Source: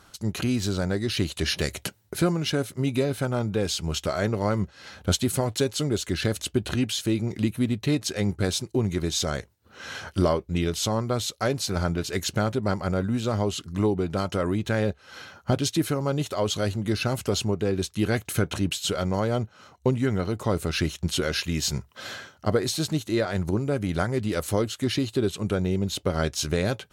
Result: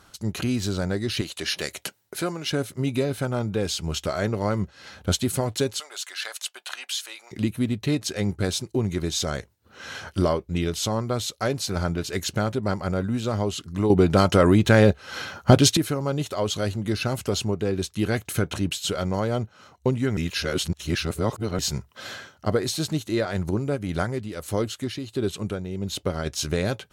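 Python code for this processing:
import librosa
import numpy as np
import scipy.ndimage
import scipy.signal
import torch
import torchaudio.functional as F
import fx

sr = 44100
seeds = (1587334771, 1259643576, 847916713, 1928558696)

y = fx.highpass(x, sr, hz=470.0, slope=6, at=(1.21, 2.51))
y = fx.highpass(y, sr, hz=800.0, slope=24, at=(5.78, 7.31), fade=0.02)
y = fx.tremolo(y, sr, hz=1.5, depth=0.59, at=(23.75, 26.25), fade=0.02)
y = fx.edit(y, sr, fx.clip_gain(start_s=13.9, length_s=1.87, db=9.0),
    fx.reverse_span(start_s=20.17, length_s=1.42), tone=tone)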